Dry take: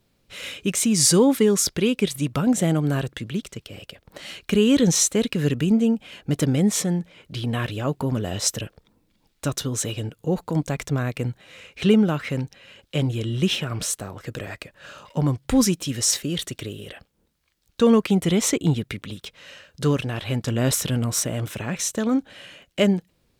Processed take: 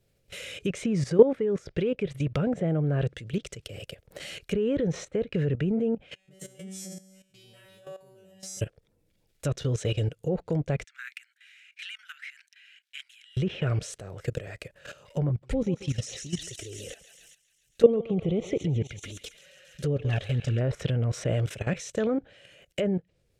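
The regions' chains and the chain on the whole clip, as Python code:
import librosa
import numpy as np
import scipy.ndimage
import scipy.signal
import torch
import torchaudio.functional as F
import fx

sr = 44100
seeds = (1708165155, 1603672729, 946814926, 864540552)

y = fx.chain(x, sr, fx.high_shelf(hz=4100.0, db=6.5),
    fx.comb_fb(f0_hz=190.0, decay_s=0.83, harmonics='all', damping=0.0, mix_pct=100), at=(6.15, 8.61))
y = fx.chain(y, sr, fx.steep_highpass(hz=1500.0, slope=48),
    fx.high_shelf(hz=3800.0, db=-12.0), at=(10.84, 13.37))
y = fx.chain(y, sr, fx.notch(hz=990.0, q=7.2),
    fx.env_flanger(rest_ms=6.8, full_db=-17.5),
    fx.echo_thinned(ms=136, feedback_pct=67, hz=1000.0, wet_db=-8), at=(15.29, 20.61))
y = fx.env_lowpass_down(y, sr, base_hz=1600.0, full_db=-17.5)
y = fx.graphic_eq(y, sr, hz=(125, 250, 500, 1000, 4000), db=(3, -10, 6, -11, -5))
y = fx.level_steps(y, sr, step_db=15)
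y = y * librosa.db_to_amplitude(5.0)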